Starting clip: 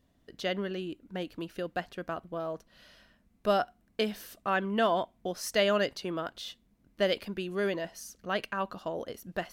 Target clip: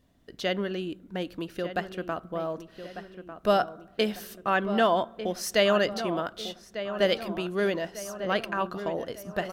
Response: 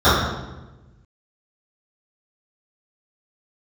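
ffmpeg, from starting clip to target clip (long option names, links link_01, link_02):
-filter_complex "[0:a]asplit=2[link_01][link_02];[link_02]adelay=1198,lowpass=frequency=2200:poles=1,volume=-10.5dB,asplit=2[link_03][link_04];[link_04]adelay=1198,lowpass=frequency=2200:poles=1,volume=0.52,asplit=2[link_05][link_06];[link_06]adelay=1198,lowpass=frequency=2200:poles=1,volume=0.52,asplit=2[link_07][link_08];[link_08]adelay=1198,lowpass=frequency=2200:poles=1,volume=0.52,asplit=2[link_09][link_10];[link_10]adelay=1198,lowpass=frequency=2200:poles=1,volume=0.52,asplit=2[link_11][link_12];[link_12]adelay=1198,lowpass=frequency=2200:poles=1,volume=0.52[link_13];[link_01][link_03][link_05][link_07][link_09][link_11][link_13]amix=inputs=7:normalize=0,asplit=2[link_14][link_15];[1:a]atrim=start_sample=2205[link_16];[link_15][link_16]afir=irnorm=-1:irlink=0,volume=-49.5dB[link_17];[link_14][link_17]amix=inputs=2:normalize=0,volume=3.5dB"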